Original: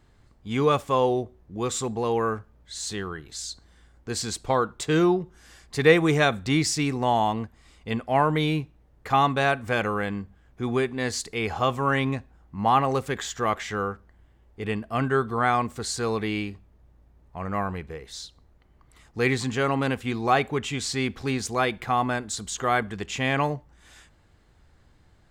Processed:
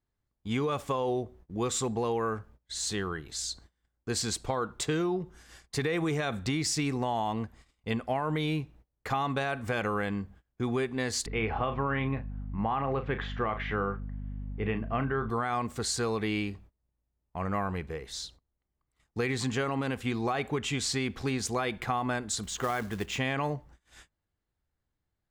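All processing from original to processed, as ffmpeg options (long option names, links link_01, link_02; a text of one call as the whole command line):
ffmpeg -i in.wav -filter_complex "[0:a]asettb=1/sr,asplit=3[link_01][link_02][link_03];[link_01]atrim=end=11.264[link_04];[link_02]atrim=start=11.26:end=15.3,asetpts=PTS-STARTPTS,afade=type=in:duration=0.004:curve=qsin,afade=type=out:start_time=4.036:duration=0.004:curve=qsin,lowpass=frequency=2900:width=0.5412,lowpass=frequency=2900:width=1.3066,asplit=2[link_05][link_06];[link_06]adelay=36,volume=-10.5dB[link_07];[link_05][link_07]amix=inputs=2:normalize=0,atrim=end_sample=178164,aeval=exprs='val(0)+0.0158*(sin(2*PI*50*n/s)+sin(2*PI*2*50*n/s)/2+sin(2*PI*3*50*n/s)/3+sin(2*PI*4*50*n/s)/4+sin(2*PI*5*50*n/s)/5)':channel_layout=same[link_08];[link_03]atrim=start=15.296[link_09];[link_04][link_08]acrossfade=duration=0.004:curve1=hsin:curve2=qsin[link_10];[link_10][link_09]acrossfade=duration=0.004:curve1=qsin:curve2=hsin,asettb=1/sr,asplit=3[link_11][link_12][link_13];[link_11]atrim=end=22.434[link_14];[link_12]atrim=start=22.43:end=23.18,asetpts=PTS-STARTPTS,afade=type=in:duration=0.004:curve=qsin,afade=type=out:start_time=0.746:duration=0.004:curve=qsin,highshelf=frequency=6400:gain=-9.5,acrusher=bits=4:mode=log:mix=0:aa=0.000001[link_15];[link_13]atrim=start=23.176[link_16];[link_14][link_15]acrossfade=duration=0.004:curve1=hsin:curve2=qsin[link_17];[link_17][link_16]acrossfade=duration=0.004:curve1=qsin:curve2=hsin,agate=range=-25dB:threshold=-50dB:ratio=16:detection=peak,alimiter=limit=-16dB:level=0:latency=1,acompressor=threshold=-26dB:ratio=6" out.wav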